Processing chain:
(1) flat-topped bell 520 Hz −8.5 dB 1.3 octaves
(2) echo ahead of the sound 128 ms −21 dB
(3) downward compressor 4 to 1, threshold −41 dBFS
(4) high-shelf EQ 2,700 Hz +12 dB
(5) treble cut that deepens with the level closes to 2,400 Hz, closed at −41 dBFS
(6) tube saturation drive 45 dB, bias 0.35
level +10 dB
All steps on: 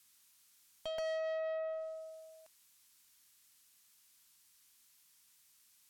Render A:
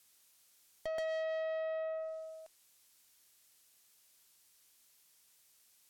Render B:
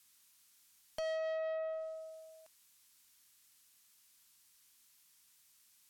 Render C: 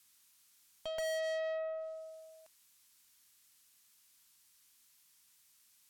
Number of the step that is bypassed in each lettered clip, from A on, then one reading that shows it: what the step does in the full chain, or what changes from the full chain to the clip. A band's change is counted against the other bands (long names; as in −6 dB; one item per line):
1, 4 kHz band −4.5 dB
2, 4 kHz band −3.0 dB
3, change in momentary loudness spread +1 LU